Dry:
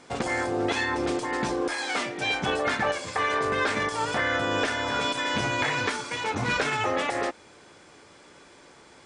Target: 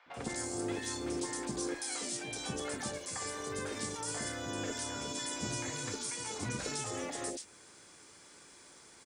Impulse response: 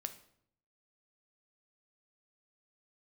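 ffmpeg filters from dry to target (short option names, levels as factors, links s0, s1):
-filter_complex "[0:a]aemphasis=mode=production:type=75fm,acrossover=split=160|620|4900[s0][s1][s2][s3];[s2]acompressor=threshold=0.0126:ratio=4[s4];[s0][s1][s4][s3]amix=inputs=4:normalize=0,acrossover=split=640|3000[s5][s6][s7];[s5]adelay=60[s8];[s7]adelay=140[s9];[s8][s6][s9]amix=inputs=3:normalize=0,volume=0.447"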